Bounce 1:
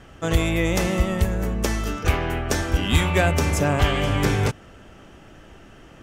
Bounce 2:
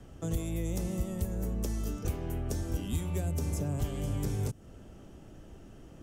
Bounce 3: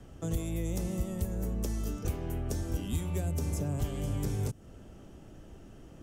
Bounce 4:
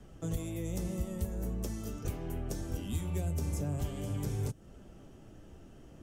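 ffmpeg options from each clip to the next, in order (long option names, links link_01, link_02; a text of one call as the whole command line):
ffmpeg -i in.wav -filter_complex "[0:a]acrossover=split=150|410|6000[link_01][link_02][link_03][link_04];[link_01]acompressor=threshold=-30dB:ratio=4[link_05];[link_02]acompressor=threshold=-36dB:ratio=4[link_06];[link_03]acompressor=threshold=-37dB:ratio=4[link_07];[link_04]acompressor=threshold=-40dB:ratio=4[link_08];[link_05][link_06][link_07][link_08]amix=inputs=4:normalize=0,equalizer=frequency=1900:width_type=o:width=2.7:gain=-13.5,volume=-2dB" out.wav
ffmpeg -i in.wav -af anull out.wav
ffmpeg -i in.wav -af "flanger=delay=4.6:depth=10:regen=-49:speed=0.42:shape=triangular,volume=1.5dB" out.wav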